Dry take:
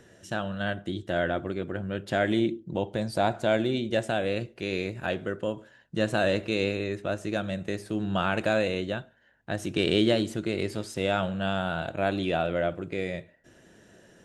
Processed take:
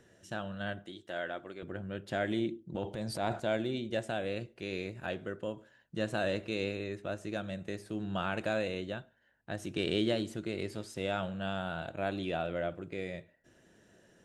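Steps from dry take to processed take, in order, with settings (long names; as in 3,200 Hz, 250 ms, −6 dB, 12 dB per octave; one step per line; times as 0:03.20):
0:00.86–0:01.63: high-pass filter 610 Hz 6 dB per octave
0:02.74–0:03.40: transient designer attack −5 dB, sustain +8 dB
level −7.5 dB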